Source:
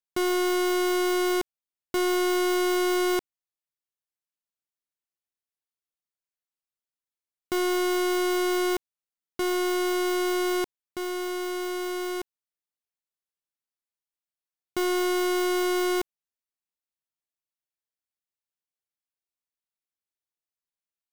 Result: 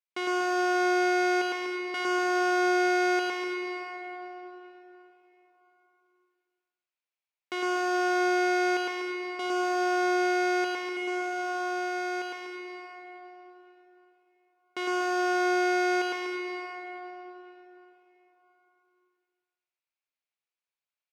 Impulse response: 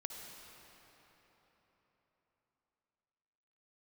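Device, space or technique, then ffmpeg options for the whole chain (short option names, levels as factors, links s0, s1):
station announcement: -filter_complex "[0:a]highpass=460,lowpass=4900,equalizer=f=2400:t=o:w=0.44:g=8,aecho=1:1:107.9|244.9:0.891|0.398[s0];[1:a]atrim=start_sample=2205[s1];[s0][s1]afir=irnorm=-1:irlink=0"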